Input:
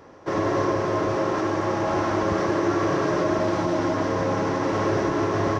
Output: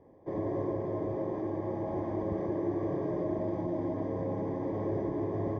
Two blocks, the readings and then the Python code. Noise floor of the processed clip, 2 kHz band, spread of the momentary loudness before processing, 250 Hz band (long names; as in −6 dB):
−39 dBFS, −23.5 dB, 2 LU, −8.0 dB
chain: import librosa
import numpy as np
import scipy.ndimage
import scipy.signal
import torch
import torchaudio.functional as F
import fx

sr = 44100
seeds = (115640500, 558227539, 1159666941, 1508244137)

y = np.convolve(x, np.full(32, 1.0 / 32))[:len(x)]
y = F.gain(torch.from_numpy(y), -7.5).numpy()